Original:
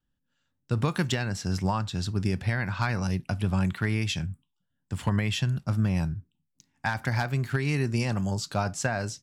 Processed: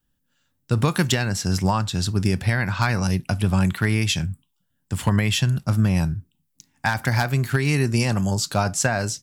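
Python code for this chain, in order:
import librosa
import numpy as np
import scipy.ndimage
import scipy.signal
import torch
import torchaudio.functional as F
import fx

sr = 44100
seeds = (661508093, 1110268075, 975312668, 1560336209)

y = fx.high_shelf(x, sr, hz=8200.0, db=11.5)
y = y * 10.0 ** (6.0 / 20.0)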